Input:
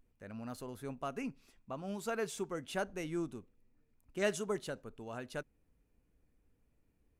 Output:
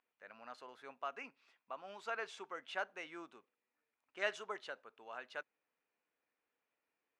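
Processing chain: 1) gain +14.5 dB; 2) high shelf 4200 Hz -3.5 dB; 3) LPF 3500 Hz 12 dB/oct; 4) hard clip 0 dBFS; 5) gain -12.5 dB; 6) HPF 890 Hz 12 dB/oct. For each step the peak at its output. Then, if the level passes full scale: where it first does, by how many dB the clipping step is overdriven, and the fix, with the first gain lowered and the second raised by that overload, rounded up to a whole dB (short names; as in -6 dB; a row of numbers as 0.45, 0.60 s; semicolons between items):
-5.0, -5.5, -5.5, -5.5, -18.0, -20.5 dBFS; no overload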